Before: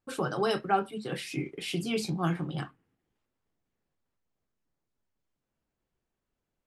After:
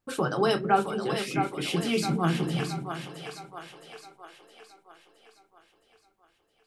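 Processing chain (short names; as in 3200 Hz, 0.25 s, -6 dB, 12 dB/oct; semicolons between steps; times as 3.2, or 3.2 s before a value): split-band echo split 420 Hz, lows 0.223 s, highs 0.666 s, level -6.5 dB; gain +3.5 dB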